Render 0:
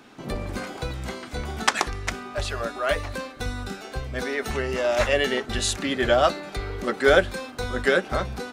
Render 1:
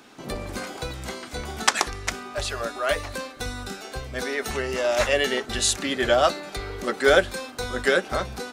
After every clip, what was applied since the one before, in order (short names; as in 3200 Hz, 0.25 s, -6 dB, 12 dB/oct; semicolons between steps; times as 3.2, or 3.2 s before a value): tone controls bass -4 dB, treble +5 dB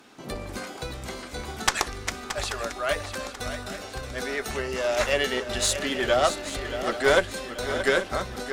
tube stage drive 7 dB, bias 0.55; swung echo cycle 0.833 s, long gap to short 3:1, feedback 45%, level -10.5 dB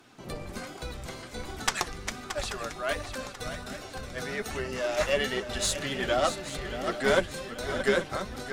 octaver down 1 oct, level -2 dB; flange 1.3 Hz, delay 2.6 ms, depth 4.1 ms, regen +52%